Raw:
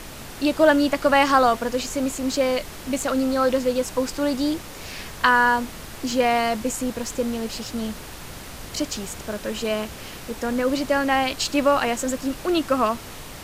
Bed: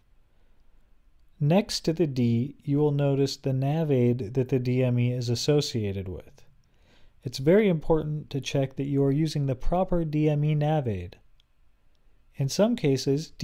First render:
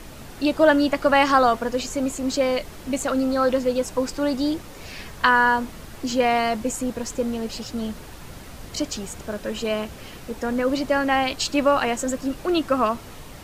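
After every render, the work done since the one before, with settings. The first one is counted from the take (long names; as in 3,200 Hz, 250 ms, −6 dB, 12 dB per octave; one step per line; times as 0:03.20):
broadband denoise 6 dB, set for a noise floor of −38 dBFS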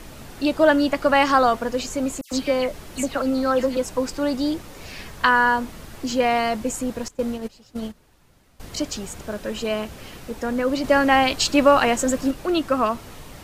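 0:02.21–0:03.77: all-pass dispersion lows, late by 106 ms, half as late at 2,700 Hz
0:07.08–0:08.60: noise gate −28 dBFS, range −18 dB
0:10.84–0:12.31: clip gain +4 dB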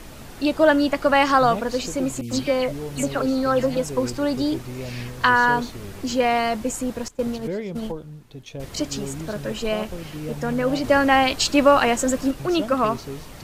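mix in bed −9 dB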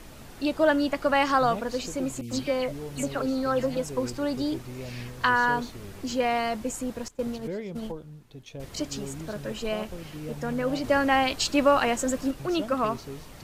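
level −5.5 dB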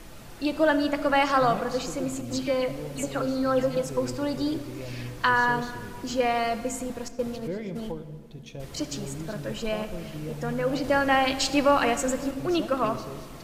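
rectangular room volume 3,100 cubic metres, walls mixed, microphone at 0.78 metres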